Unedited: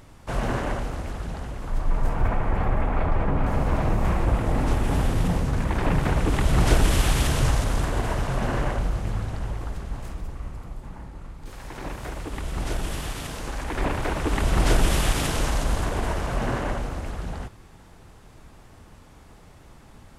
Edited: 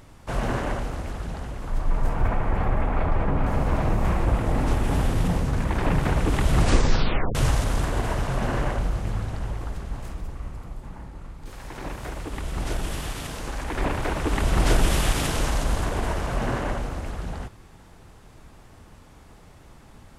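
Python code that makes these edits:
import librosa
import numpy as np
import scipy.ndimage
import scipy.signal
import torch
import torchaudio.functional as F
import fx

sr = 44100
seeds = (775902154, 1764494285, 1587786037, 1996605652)

y = fx.edit(x, sr, fx.tape_stop(start_s=6.57, length_s=0.78), tone=tone)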